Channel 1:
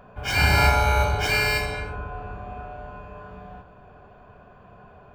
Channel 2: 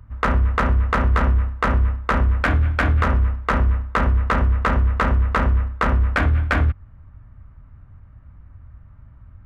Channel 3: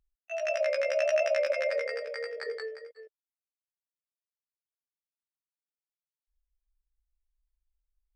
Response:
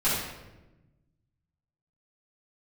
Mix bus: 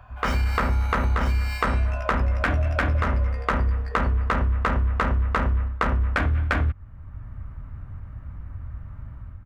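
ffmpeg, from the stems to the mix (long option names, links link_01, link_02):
-filter_complex "[0:a]alimiter=limit=-16.5dB:level=0:latency=1:release=107,highpass=frequency=740:width=0.5412,highpass=frequency=740:width=1.3066,acompressor=threshold=-32dB:ratio=6,volume=1dB[link_01];[1:a]dynaudnorm=framelen=160:gausssize=5:maxgain=13dB,volume=-5.5dB[link_02];[2:a]adynamicsmooth=sensitivity=7.5:basefreq=3900,adelay=1450,volume=-6dB[link_03];[link_01][link_02][link_03]amix=inputs=3:normalize=0,acompressor=threshold=-19dB:ratio=6"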